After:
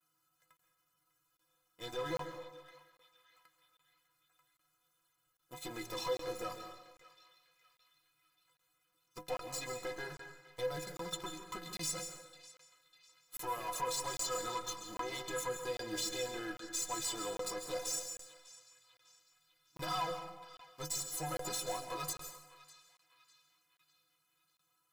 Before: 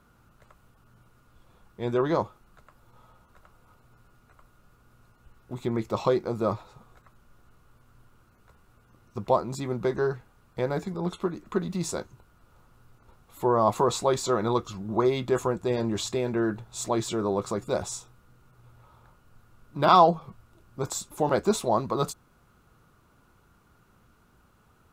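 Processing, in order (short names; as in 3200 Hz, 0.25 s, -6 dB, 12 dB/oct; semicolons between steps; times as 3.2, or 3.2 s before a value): gate with hold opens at -55 dBFS; tilt +4 dB/oct; sample leveller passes 3; compressor, threshold -21 dBFS, peak gain reduction 12.5 dB; tube stage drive 23 dB, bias 0.5; metallic resonator 150 Hz, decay 0.27 s, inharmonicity 0.03; on a send: narrowing echo 0.6 s, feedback 54%, band-pass 2900 Hz, level -15 dB; on the sum: plate-style reverb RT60 0.93 s, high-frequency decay 0.75×, pre-delay 0.12 s, DRR 6.5 dB; crackling interface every 0.80 s, samples 1024, zero, from 0.57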